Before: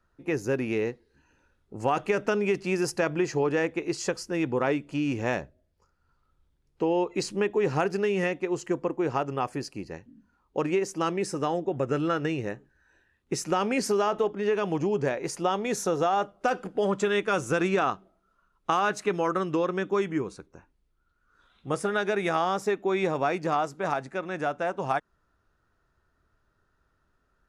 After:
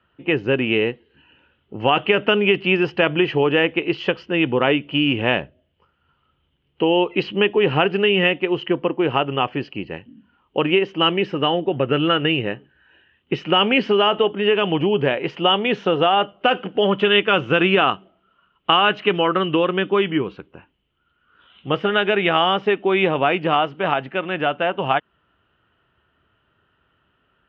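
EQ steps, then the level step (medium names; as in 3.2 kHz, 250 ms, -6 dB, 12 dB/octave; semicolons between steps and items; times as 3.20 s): high-pass 89 Hz; resonant low-pass 3 kHz, resonance Q 15; distance through air 290 m; +8.0 dB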